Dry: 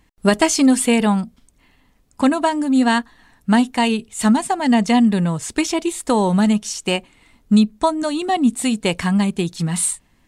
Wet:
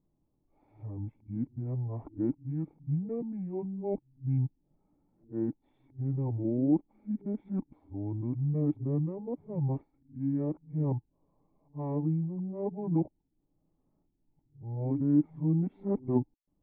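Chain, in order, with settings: reverse the whole clip; wide varispeed 0.618×; cascade formant filter u; trim -3.5 dB

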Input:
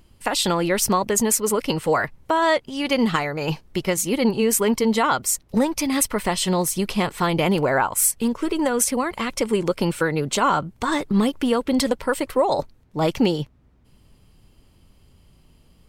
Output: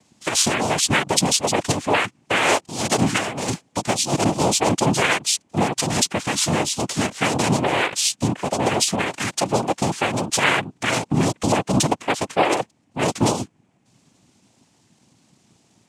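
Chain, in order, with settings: noise-vocoded speech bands 4; treble shelf 4.4 kHz +8 dB

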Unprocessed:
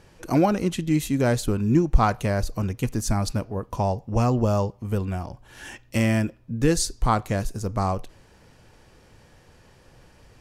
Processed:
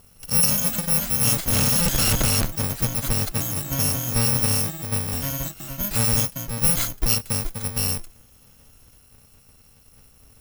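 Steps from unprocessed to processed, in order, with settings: bit-reversed sample order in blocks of 128 samples; 1.53–2.45 s: Schmitt trigger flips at -32.5 dBFS; ever faster or slower copies 218 ms, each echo +3 st, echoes 2, each echo -6 dB

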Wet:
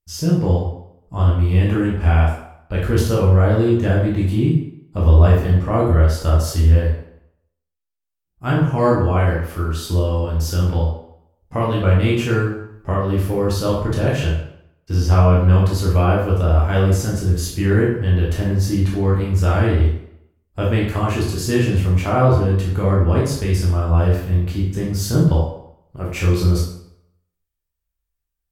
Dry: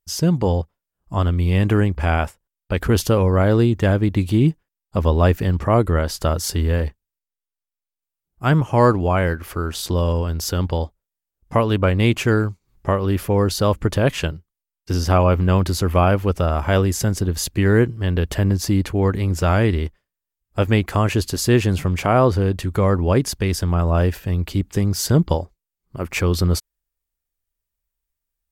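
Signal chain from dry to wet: bass shelf 160 Hz +7 dB; reverberation RT60 0.75 s, pre-delay 12 ms, DRR -5 dB; trim -8 dB

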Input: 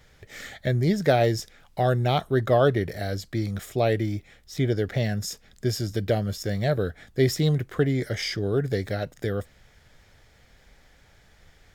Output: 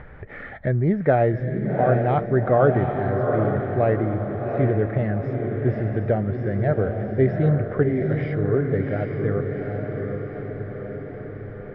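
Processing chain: echo that smears into a reverb 775 ms, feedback 49%, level -4 dB; in parallel at 0 dB: upward compressor, threshold -23 dBFS; on the sum: low-pass 1.8 kHz 24 dB/octave; trim -4 dB

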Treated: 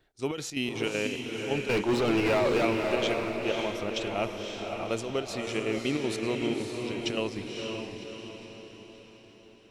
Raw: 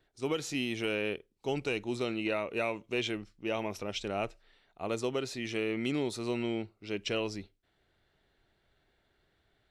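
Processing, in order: square tremolo 5.3 Hz, depth 60%, duty 65%; 1.69–2.65 s: overdrive pedal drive 33 dB, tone 1.3 kHz, clips at -20.5 dBFS; echo that smears into a reverb 549 ms, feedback 50%, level -3.5 dB; trim +3 dB

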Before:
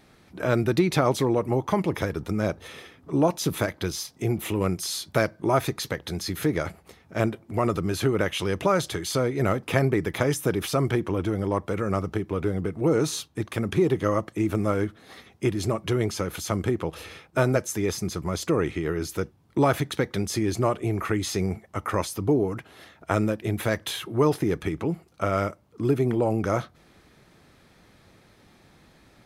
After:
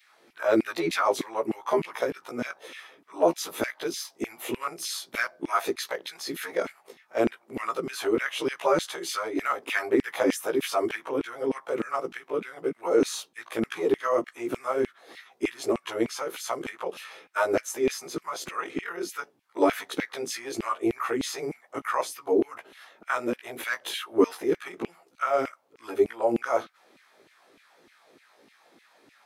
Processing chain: short-time spectra conjugated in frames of 35 ms; LFO high-pass saw down 3.3 Hz 250–2600 Hz

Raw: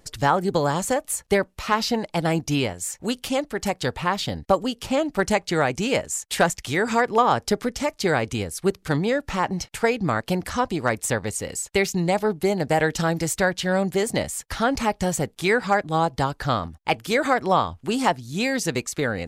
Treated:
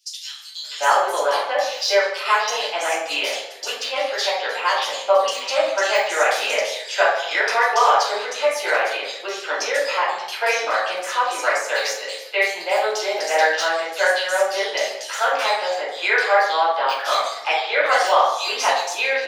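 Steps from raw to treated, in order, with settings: de-esser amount 55%; steep high-pass 620 Hz 36 dB/octave; peaking EQ 840 Hz -12.5 dB 1.7 oct; bands offset in time highs, lows 580 ms, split 3.3 kHz; reverberation RT60 0.90 s, pre-delay 3 ms, DRR -9 dB

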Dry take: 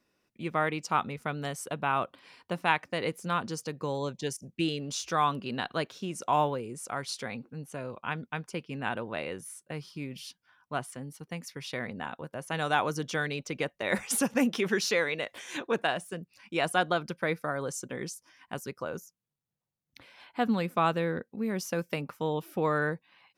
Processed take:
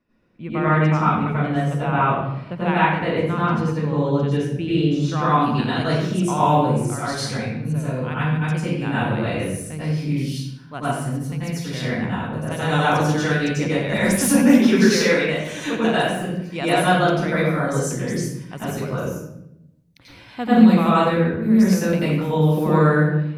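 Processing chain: tone controls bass +8 dB, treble -15 dB, from 5.29 s treble +2 dB; reverberation RT60 0.85 s, pre-delay 85 ms, DRR -9.5 dB; trim -1.5 dB

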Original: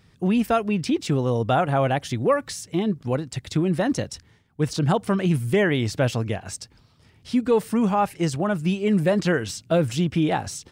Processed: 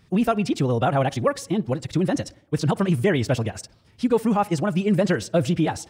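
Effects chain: tape echo 104 ms, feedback 65%, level -21 dB, low-pass 1.8 kHz; time stretch by phase-locked vocoder 0.55×; trim +1 dB

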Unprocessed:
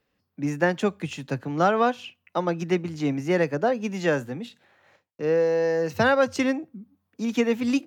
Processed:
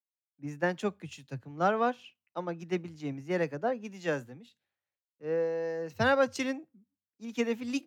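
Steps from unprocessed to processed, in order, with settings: three bands expanded up and down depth 100%; trim -8.5 dB

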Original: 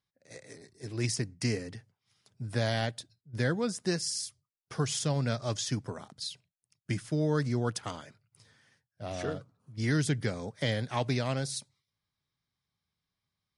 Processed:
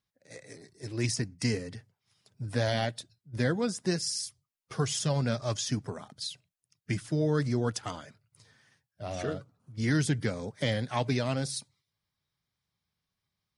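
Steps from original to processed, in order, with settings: coarse spectral quantiser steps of 15 dB; trim +1.5 dB

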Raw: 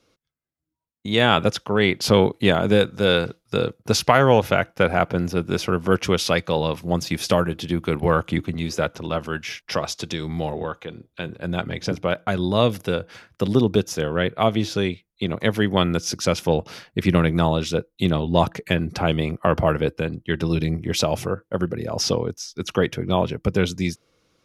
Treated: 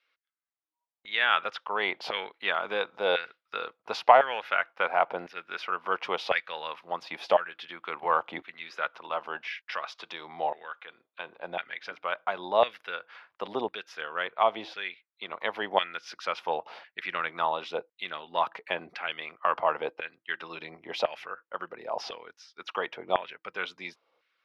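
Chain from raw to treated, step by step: peaking EQ 1.4 kHz -7 dB 1.2 oct; LFO high-pass saw down 0.95 Hz 760–1800 Hz; distance through air 370 m

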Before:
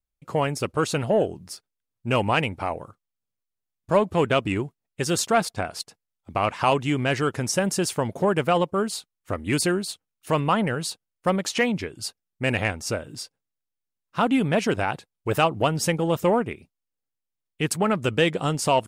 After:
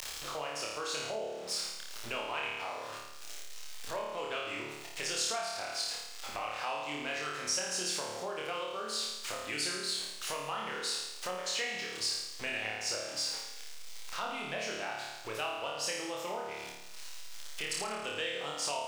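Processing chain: jump at every zero crossing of -33 dBFS; three-band isolator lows -17 dB, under 380 Hz, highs -23 dB, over 6.2 kHz; upward compressor, threshold -26 dBFS; on a send: flutter echo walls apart 4.7 m, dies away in 0.9 s; on the sum: compression 2.5:1, threshold -24 dBFS, peak gain reduction 8.5 dB; pre-emphasis filter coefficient 0.8

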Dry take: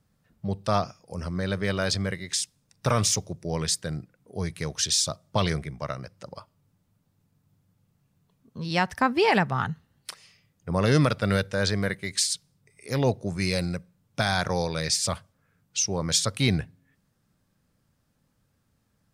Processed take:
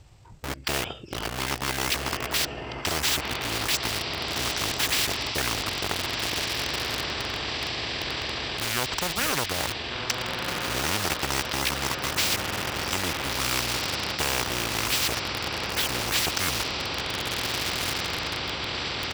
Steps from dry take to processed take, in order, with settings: formant shift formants -4 st; echo that smears into a reverb 1551 ms, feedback 64%, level -11 dB; pitch shift -6.5 st; in parallel at -12 dB: bit crusher 5-bit; on the sum: spectrum-flattening compressor 4:1

